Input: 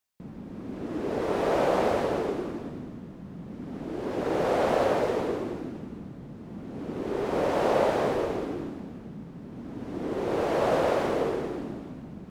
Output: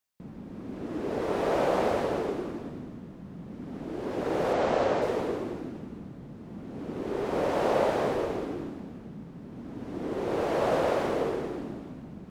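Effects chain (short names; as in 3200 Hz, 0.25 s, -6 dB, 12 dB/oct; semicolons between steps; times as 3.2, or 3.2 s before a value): 4.53–5.02 LPF 7600 Hz 24 dB/oct; gain -1.5 dB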